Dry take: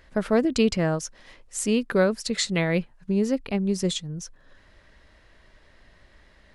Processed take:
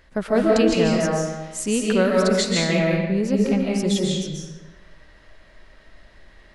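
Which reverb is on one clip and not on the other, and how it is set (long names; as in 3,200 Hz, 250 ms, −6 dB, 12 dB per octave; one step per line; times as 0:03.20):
comb and all-pass reverb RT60 1.2 s, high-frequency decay 0.75×, pre-delay 105 ms, DRR −3 dB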